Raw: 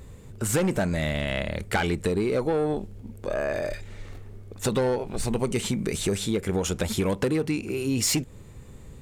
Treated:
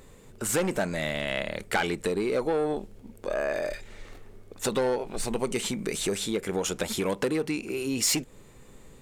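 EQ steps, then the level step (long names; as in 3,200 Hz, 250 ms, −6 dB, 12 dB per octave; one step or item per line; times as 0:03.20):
parametric band 76 Hz −15 dB 2.1 octaves
0.0 dB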